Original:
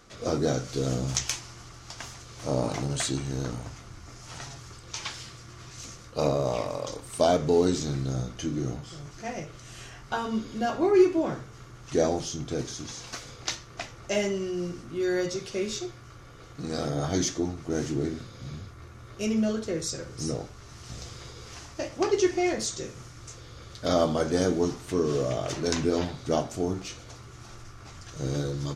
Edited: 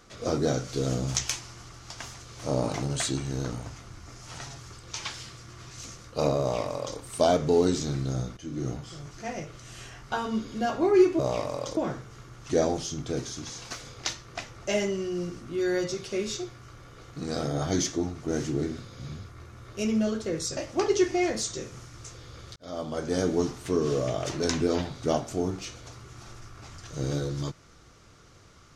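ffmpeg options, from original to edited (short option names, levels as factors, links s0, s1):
-filter_complex "[0:a]asplit=6[s0][s1][s2][s3][s4][s5];[s0]atrim=end=8.37,asetpts=PTS-STARTPTS,afade=t=out:st=8.366:d=0.004:c=hsin:silence=0.16788[s6];[s1]atrim=start=8.37:end=11.192,asetpts=PTS-STARTPTS,afade=t=in:d=0.31:silence=0.16788[s7];[s2]atrim=start=6.398:end=6.982[s8];[s3]atrim=start=11.188:end=19.992[s9];[s4]atrim=start=21.798:end=23.79,asetpts=PTS-STARTPTS,afade=t=out:st=1.988:d=0.004:c=hsin[s10];[s5]atrim=start=23.79,asetpts=PTS-STARTPTS,afade=t=in:d=0.8[s11];[s6][s7]concat=n=2:v=0:a=1[s12];[s12][s8]acrossfade=d=0.004:c1=hsin:c2=hsin[s13];[s13][s9]acrossfade=d=0.004:c1=hsin:c2=hsin[s14];[s10][s11]concat=n=2:v=0:a=1[s15];[s14][s15]acrossfade=d=0.004:c1=hsin:c2=hsin"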